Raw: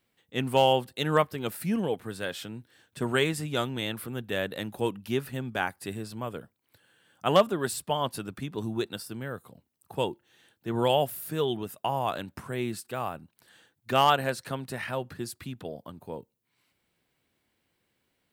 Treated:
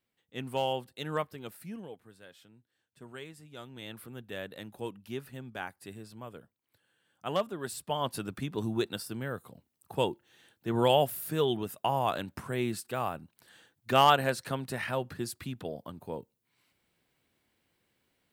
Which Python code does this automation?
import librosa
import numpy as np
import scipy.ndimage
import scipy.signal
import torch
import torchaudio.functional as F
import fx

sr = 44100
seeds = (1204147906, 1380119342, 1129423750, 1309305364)

y = fx.gain(x, sr, db=fx.line((1.31, -9.0), (2.19, -19.5), (3.49, -19.5), (3.95, -9.5), (7.51, -9.5), (8.24, 0.0)))